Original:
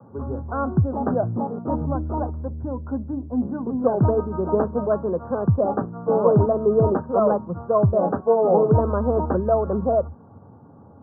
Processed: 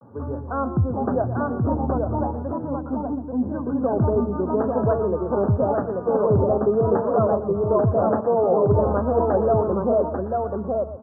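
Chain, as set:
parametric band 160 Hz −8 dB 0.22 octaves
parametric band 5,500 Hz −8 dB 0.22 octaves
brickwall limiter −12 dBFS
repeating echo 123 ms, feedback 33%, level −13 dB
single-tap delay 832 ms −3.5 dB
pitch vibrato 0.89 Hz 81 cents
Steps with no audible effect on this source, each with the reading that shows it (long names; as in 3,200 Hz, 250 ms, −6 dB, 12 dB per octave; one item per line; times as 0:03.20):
parametric band 5,500 Hz: nothing at its input above 1,400 Hz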